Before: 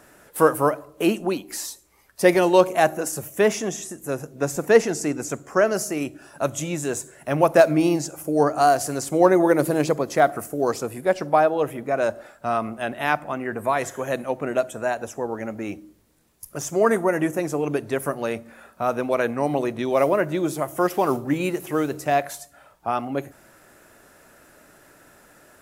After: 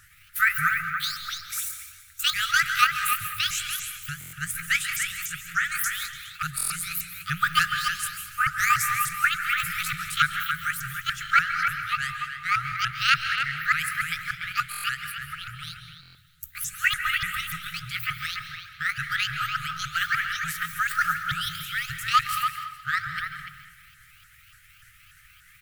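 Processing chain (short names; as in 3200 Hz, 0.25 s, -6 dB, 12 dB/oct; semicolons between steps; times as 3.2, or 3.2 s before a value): repeated pitch sweeps +11 st, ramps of 0.292 s; split-band echo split 1100 Hz, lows 0.115 s, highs 0.208 s, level -15 dB; in parallel at -7 dB: crossover distortion -39.5 dBFS; on the sum: brick-wall FIR band-stop 150–1200 Hz; low shelf 120 Hz +7 dB; speakerphone echo 0.29 s, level -6 dB; on a send at -9 dB: reverb RT60 0.60 s, pre-delay 0.134 s; on the sum: stuck buffer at 4.19/6.56/14.7/16.01, samples 1024, times 5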